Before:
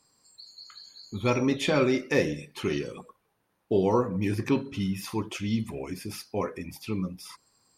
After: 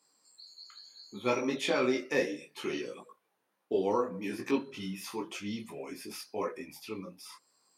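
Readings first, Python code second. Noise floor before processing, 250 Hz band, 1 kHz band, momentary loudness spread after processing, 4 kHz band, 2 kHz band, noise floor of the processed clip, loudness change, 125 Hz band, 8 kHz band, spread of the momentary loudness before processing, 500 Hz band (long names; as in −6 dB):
−74 dBFS, −7.5 dB, −3.5 dB, 20 LU, −3.5 dB, −3.5 dB, −79 dBFS, −5.5 dB, −15.5 dB, −3.5 dB, 21 LU, −4.5 dB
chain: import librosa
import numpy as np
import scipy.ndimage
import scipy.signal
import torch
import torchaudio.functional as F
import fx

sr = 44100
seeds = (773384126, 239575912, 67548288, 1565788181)

y = scipy.signal.sosfilt(scipy.signal.butter(2, 280.0, 'highpass', fs=sr, output='sos'), x)
y = fx.detune_double(y, sr, cents=22)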